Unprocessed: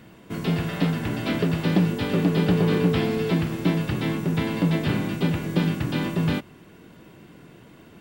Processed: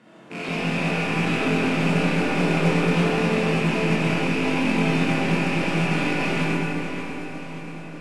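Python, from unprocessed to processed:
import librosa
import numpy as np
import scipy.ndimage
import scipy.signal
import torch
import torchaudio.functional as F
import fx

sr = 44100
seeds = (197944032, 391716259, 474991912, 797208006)

y = fx.rattle_buzz(x, sr, strikes_db=-33.0, level_db=-16.0)
y = scipy.signal.sosfilt(scipy.signal.butter(4, 140.0, 'highpass', fs=sr, output='sos'), y)
y = 10.0 ** (-21.5 / 20.0) * np.tanh(y / 10.0 ** (-21.5 / 20.0))
y = fx.low_shelf(y, sr, hz=280.0, db=-10.5)
y = fx.rev_freeverb(y, sr, rt60_s=4.2, hf_ratio=0.45, predelay_ms=5, drr_db=-8.5)
y = fx.mod_noise(y, sr, seeds[0], snr_db=13)
y = scipy.signal.sosfilt(scipy.signal.butter(4, 9400.0, 'lowpass', fs=sr, output='sos'), y)
y = fx.high_shelf(y, sr, hz=2100.0, db=-10.0)
y = fx.doubler(y, sr, ms=23.0, db=-5.0)
y = fx.echo_feedback(y, sr, ms=584, feedback_pct=53, wet_db=-11)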